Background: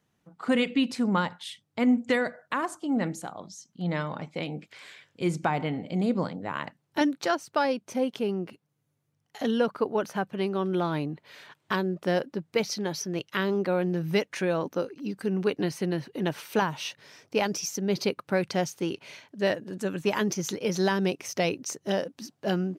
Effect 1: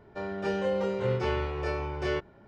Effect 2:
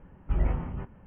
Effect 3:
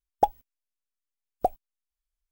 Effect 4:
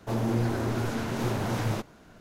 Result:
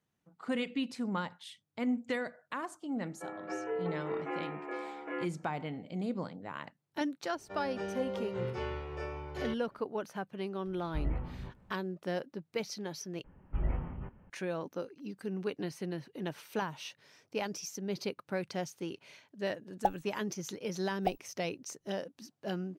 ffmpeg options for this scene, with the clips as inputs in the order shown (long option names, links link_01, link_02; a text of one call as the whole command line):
ffmpeg -i bed.wav -i cue0.wav -i cue1.wav -i cue2.wav -filter_complex "[1:a]asplit=2[link_01][link_02];[2:a]asplit=2[link_03][link_04];[0:a]volume=-9.5dB[link_05];[link_01]highpass=frequency=420:width_type=q:width=0.5412,highpass=frequency=420:width_type=q:width=1.307,lowpass=frequency=2500:width_type=q:width=0.5176,lowpass=frequency=2500:width_type=q:width=0.7071,lowpass=frequency=2500:width_type=q:width=1.932,afreqshift=-78[link_06];[link_02]bandreject=frequency=4200:width=30[link_07];[link_03]asplit=2[link_08][link_09];[link_09]adelay=16,volume=-4dB[link_10];[link_08][link_10]amix=inputs=2:normalize=0[link_11];[link_05]asplit=2[link_12][link_13];[link_12]atrim=end=13.244[link_14];[link_04]atrim=end=1.06,asetpts=PTS-STARTPTS,volume=-6.5dB[link_15];[link_13]atrim=start=14.296[link_16];[link_06]atrim=end=2.47,asetpts=PTS-STARTPTS,volume=-5.5dB,afade=type=in:duration=0.004:curve=hsin,afade=type=out:start_time=2.466:duration=0.004:curve=hsin,adelay=134505S[link_17];[link_07]atrim=end=2.47,asetpts=PTS-STARTPTS,volume=-8.5dB,afade=type=in:duration=0.004:curve=hsin,afade=type=out:start_time=2.466:duration=0.004:curve=hsin,adelay=7340[link_18];[link_11]atrim=end=1.06,asetpts=PTS-STARTPTS,volume=-10dB,afade=type=in:duration=0.004:curve=hsin,afade=type=out:start_time=1.056:duration=0.004:curve=hsin,adelay=10650[link_19];[3:a]atrim=end=2.31,asetpts=PTS-STARTPTS,volume=-7.5dB,afade=type=in:duration=0.004:curve=hsin,afade=type=out:start_time=2.306:duration=0.004:curve=hsin,adelay=19620[link_20];[link_14][link_15]acrossfade=duration=0.004:curve1=hsin:curve2=hsin[link_21];[link_21][link_16]acrossfade=duration=0.004:curve1=hsin:curve2=hsin[link_22];[link_22][link_17][link_18][link_19][link_20]amix=inputs=5:normalize=0" out.wav